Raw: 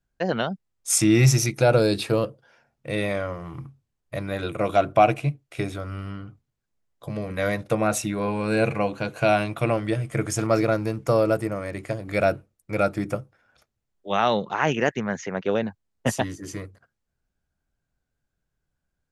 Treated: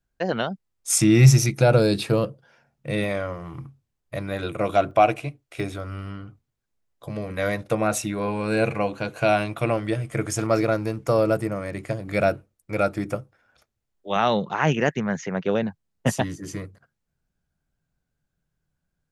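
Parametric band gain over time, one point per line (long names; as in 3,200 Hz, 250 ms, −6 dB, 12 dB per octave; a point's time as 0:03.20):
parametric band 160 Hz 0.63 octaves
−2 dB
from 0:00.99 +8.5 dB
from 0:03.04 0 dB
from 0:04.91 −11 dB
from 0:05.60 −2.5 dB
from 0:11.18 +5 dB
from 0:12.29 −2 dB
from 0:14.16 +7 dB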